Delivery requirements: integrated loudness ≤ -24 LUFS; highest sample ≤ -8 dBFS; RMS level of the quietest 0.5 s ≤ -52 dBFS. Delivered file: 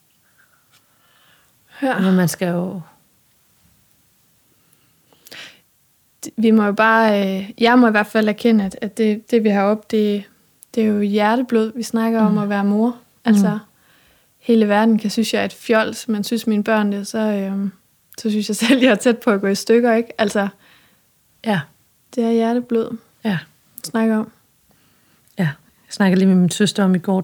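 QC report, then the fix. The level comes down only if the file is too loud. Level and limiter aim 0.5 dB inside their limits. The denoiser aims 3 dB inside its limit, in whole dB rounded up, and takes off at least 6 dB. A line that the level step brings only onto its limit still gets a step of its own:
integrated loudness -17.5 LUFS: fail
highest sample -2.0 dBFS: fail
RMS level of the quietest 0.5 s -59 dBFS: pass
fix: trim -7 dB

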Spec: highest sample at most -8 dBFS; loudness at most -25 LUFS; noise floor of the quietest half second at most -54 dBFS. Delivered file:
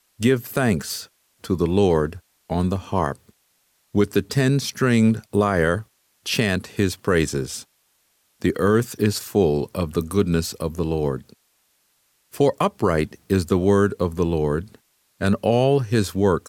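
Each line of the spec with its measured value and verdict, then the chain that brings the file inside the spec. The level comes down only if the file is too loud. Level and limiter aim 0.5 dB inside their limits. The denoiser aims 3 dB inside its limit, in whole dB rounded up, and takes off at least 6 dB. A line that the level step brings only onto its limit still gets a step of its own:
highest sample -7.0 dBFS: fail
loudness -22.0 LUFS: fail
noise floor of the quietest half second -66 dBFS: pass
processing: trim -3.5 dB

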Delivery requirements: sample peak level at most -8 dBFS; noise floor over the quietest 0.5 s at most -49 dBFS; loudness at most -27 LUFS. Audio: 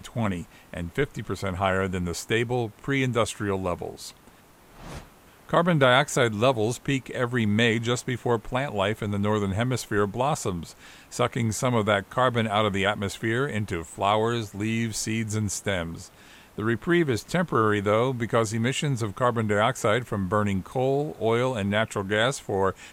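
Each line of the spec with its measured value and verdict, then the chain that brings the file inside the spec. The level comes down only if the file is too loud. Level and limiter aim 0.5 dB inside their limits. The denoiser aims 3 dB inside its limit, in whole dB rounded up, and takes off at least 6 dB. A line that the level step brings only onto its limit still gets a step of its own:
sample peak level -6.5 dBFS: fail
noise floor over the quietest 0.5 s -53 dBFS: pass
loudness -25.5 LUFS: fail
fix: trim -2 dB

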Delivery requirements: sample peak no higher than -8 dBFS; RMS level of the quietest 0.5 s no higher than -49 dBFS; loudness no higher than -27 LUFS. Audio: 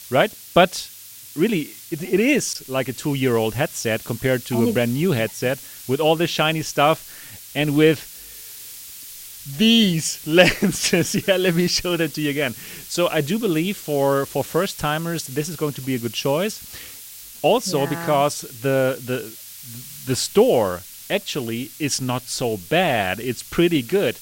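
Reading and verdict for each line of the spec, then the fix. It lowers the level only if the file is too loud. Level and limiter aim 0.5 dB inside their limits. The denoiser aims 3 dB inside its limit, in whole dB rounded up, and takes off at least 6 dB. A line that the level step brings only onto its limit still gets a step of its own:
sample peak -1.5 dBFS: fail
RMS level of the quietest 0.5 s -41 dBFS: fail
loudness -21.0 LUFS: fail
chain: noise reduction 6 dB, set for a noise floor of -41 dBFS; trim -6.5 dB; peak limiter -8.5 dBFS

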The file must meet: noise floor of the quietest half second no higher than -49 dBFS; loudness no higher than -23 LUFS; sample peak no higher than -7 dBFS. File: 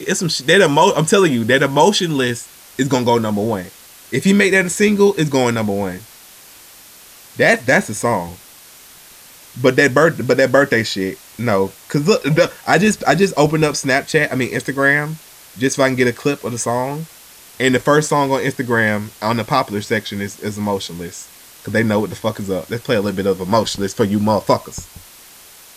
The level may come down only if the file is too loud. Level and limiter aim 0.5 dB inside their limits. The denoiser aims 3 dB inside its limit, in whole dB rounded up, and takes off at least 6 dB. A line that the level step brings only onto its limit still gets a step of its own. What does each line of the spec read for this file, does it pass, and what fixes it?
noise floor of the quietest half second -42 dBFS: fail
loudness -16.5 LUFS: fail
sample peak -1.5 dBFS: fail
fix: noise reduction 6 dB, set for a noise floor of -42 dBFS; trim -7 dB

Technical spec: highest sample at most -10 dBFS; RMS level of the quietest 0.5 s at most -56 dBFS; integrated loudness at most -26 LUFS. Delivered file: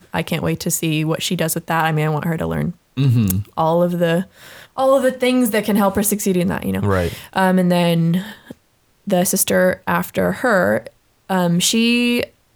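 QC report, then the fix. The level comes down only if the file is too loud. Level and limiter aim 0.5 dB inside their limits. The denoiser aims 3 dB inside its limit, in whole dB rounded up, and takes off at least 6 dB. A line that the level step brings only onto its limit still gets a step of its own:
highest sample -3.0 dBFS: fail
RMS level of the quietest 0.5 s -59 dBFS: pass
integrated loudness -18.0 LUFS: fail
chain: trim -8.5 dB

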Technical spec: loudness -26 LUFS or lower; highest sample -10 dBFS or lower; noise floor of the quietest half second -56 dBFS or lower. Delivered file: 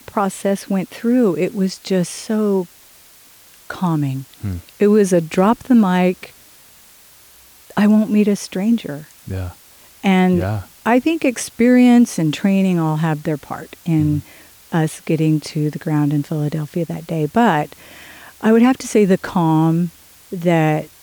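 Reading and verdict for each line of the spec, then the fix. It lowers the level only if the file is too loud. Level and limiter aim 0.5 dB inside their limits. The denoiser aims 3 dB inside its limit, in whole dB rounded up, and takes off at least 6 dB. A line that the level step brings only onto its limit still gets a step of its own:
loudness -17.5 LUFS: fail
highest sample -4.5 dBFS: fail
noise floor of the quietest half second -46 dBFS: fail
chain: noise reduction 6 dB, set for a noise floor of -46 dBFS; trim -9 dB

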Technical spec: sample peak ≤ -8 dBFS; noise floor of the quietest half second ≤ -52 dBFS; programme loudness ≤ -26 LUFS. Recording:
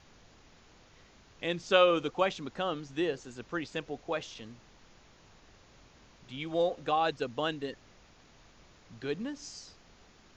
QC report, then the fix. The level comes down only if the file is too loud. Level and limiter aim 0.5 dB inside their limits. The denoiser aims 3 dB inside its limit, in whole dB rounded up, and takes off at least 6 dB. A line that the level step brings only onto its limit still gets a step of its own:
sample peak -11.0 dBFS: pass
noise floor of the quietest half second -59 dBFS: pass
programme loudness -32.0 LUFS: pass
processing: none needed

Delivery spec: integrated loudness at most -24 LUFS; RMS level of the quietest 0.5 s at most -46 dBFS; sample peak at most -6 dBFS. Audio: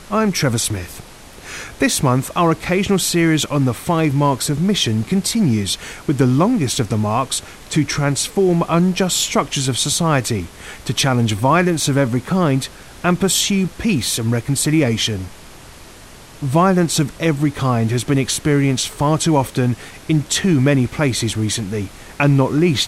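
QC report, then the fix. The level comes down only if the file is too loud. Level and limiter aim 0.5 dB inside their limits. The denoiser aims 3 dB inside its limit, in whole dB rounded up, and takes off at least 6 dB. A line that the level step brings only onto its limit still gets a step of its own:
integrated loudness -17.5 LUFS: fail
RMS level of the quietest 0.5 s -40 dBFS: fail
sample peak -1.5 dBFS: fail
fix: trim -7 dB

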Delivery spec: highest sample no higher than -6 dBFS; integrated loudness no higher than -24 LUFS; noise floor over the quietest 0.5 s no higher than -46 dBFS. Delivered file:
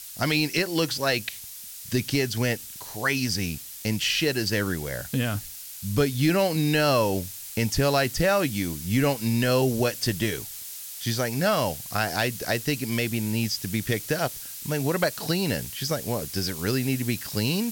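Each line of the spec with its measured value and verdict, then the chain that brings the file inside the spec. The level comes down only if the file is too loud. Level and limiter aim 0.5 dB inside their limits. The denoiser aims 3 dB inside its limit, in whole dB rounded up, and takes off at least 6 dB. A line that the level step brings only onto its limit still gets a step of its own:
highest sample -11.0 dBFS: pass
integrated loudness -25.5 LUFS: pass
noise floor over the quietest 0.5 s -41 dBFS: fail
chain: noise reduction 8 dB, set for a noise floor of -41 dBFS

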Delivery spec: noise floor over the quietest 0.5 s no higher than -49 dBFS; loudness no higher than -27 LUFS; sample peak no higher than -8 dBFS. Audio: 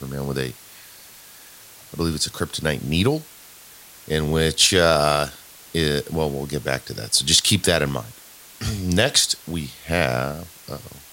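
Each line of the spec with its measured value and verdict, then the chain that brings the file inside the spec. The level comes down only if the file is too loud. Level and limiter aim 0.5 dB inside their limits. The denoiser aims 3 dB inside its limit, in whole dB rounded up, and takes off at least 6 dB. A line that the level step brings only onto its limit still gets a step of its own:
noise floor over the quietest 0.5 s -45 dBFS: fail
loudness -21.0 LUFS: fail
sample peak -2.0 dBFS: fail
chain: trim -6.5 dB

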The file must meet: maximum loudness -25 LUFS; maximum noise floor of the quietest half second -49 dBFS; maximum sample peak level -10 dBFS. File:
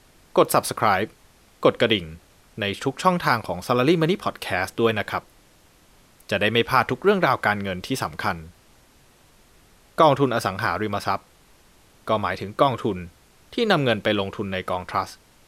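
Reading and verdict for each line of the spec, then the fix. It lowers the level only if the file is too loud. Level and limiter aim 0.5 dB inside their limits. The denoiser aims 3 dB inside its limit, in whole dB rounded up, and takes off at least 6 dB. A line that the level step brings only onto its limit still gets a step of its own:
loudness -22.5 LUFS: fail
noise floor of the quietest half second -55 dBFS: pass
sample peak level -4.0 dBFS: fail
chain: trim -3 dB; peak limiter -10.5 dBFS

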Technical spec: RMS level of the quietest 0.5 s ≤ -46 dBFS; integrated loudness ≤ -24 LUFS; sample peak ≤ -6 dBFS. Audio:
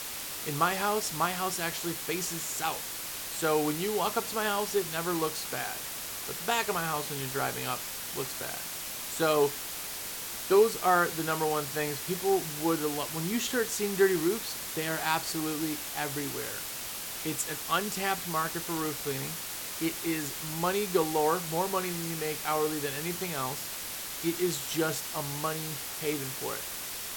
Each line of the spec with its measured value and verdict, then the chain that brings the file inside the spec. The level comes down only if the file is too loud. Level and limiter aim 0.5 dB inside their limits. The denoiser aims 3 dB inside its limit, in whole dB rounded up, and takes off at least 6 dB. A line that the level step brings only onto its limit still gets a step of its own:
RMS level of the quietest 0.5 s -38 dBFS: fail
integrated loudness -30.5 LUFS: pass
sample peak -11.0 dBFS: pass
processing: noise reduction 11 dB, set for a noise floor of -38 dBFS

